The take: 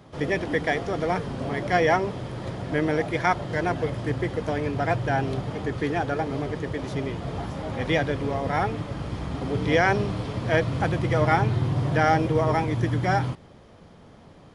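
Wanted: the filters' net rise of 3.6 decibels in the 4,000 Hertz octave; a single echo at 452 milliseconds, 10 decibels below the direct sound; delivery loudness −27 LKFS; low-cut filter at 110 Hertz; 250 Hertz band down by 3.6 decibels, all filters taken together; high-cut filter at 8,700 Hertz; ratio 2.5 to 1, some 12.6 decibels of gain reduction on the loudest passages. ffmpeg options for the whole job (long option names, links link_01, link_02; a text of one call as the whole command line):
ffmpeg -i in.wav -af "highpass=110,lowpass=8700,equalizer=frequency=250:width_type=o:gain=-5,equalizer=frequency=4000:width_type=o:gain=5,acompressor=threshold=-36dB:ratio=2.5,aecho=1:1:452:0.316,volume=8.5dB" out.wav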